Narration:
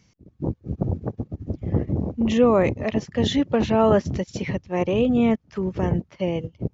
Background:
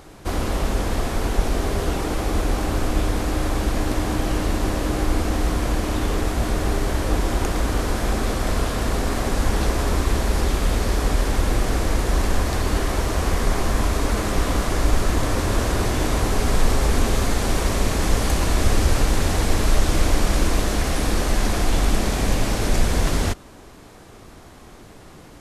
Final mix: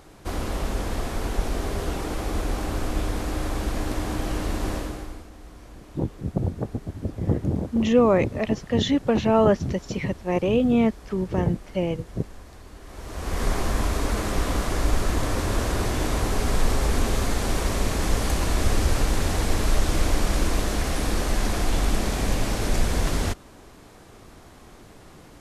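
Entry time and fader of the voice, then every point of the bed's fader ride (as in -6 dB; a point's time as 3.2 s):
5.55 s, -0.5 dB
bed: 4.76 s -5 dB
5.3 s -23 dB
12.79 s -23 dB
13.43 s -3.5 dB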